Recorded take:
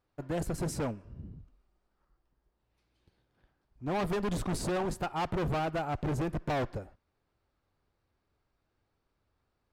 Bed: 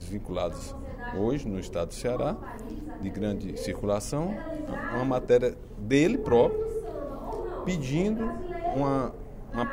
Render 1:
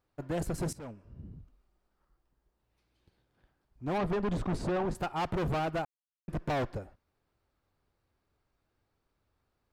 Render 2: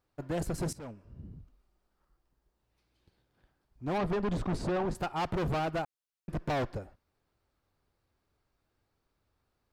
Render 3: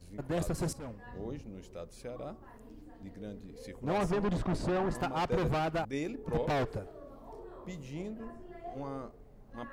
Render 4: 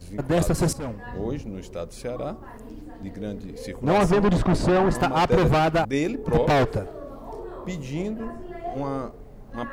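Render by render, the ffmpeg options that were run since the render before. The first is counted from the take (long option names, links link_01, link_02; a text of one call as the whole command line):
ffmpeg -i in.wav -filter_complex "[0:a]asettb=1/sr,asplit=3[link_01][link_02][link_03];[link_01]atrim=end=3.984[link_04];[link_02]atrim=start=3.98:end=4.95,asetpts=PTS-STARTPTS,afade=type=in:duration=0.004:curve=qsin,afade=type=out:start_time=0.966:duration=0.004:curve=qsin,aemphasis=mode=reproduction:type=75fm[link_05];[link_03]atrim=start=4.946[link_06];[link_04][link_05]acrossfade=duration=0.004:curve1=hsin:curve2=qsin[link_07];[link_07][link_06]acrossfade=duration=0.004:curve1=qsin:curve2=hsin,asplit=4[link_08][link_09][link_10][link_11];[link_08]atrim=end=0.73,asetpts=PTS-STARTPTS,afade=type=out:start_time=0.726:duration=0.004:curve=hsin:silence=0.125893[link_12];[link_09]atrim=start=0.73:end=5.85,asetpts=PTS-STARTPTS,afade=type=in:duration=0.63:silence=0.125893,afade=type=out:start_time=5.116:duration=0.004:curve=hsin[link_13];[link_10]atrim=start=5.85:end=6.28,asetpts=PTS-STARTPTS,volume=0[link_14];[link_11]atrim=start=6.28,asetpts=PTS-STARTPTS,afade=type=in:duration=0.004:curve=hsin[link_15];[link_12][link_13][link_14][link_15]concat=n=4:v=0:a=1" out.wav
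ffmpeg -i in.wav -af "equalizer=frequency=4800:width_type=o:width=0.77:gain=2" out.wav
ffmpeg -i in.wav -i bed.wav -filter_complex "[1:a]volume=-14dB[link_01];[0:a][link_01]amix=inputs=2:normalize=0" out.wav
ffmpeg -i in.wav -af "volume=11.5dB" out.wav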